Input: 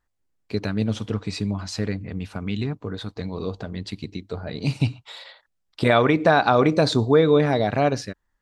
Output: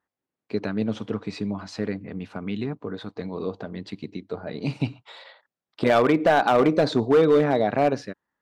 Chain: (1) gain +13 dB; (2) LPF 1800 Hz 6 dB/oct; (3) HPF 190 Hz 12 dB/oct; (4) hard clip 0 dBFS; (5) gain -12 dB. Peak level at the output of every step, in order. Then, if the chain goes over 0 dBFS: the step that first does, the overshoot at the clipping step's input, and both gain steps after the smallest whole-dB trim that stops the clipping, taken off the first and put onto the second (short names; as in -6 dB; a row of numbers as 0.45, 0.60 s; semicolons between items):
+8.5, +7.0, +7.5, 0.0, -12.0 dBFS; step 1, 7.5 dB; step 1 +5 dB, step 5 -4 dB